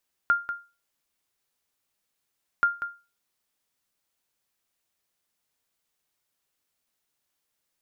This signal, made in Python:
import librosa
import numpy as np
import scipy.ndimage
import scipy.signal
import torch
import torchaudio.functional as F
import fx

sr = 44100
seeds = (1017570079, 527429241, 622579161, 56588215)

y = fx.sonar_ping(sr, hz=1400.0, decay_s=0.3, every_s=2.33, pings=2, echo_s=0.19, echo_db=-10.5, level_db=-13.5)